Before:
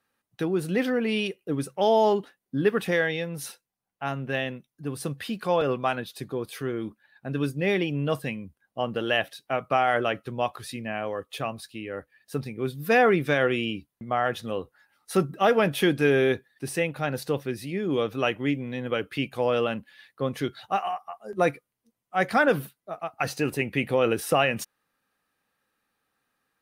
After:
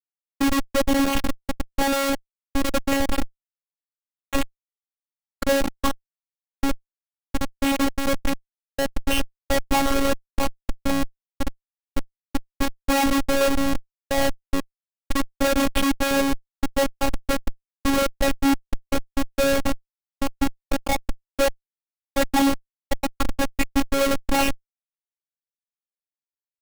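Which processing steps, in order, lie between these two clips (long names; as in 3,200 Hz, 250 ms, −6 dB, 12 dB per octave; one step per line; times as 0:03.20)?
rippled gain that drifts along the octave scale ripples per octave 0.6, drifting +1.5 Hz, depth 21 dB
in parallel at −1.5 dB: downward compressor 6 to 1, threshold −26 dBFS, peak gain reduction 17.5 dB
on the sum: comparator with hysteresis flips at −15 dBFS
phases set to zero 275 Hz
level +4 dB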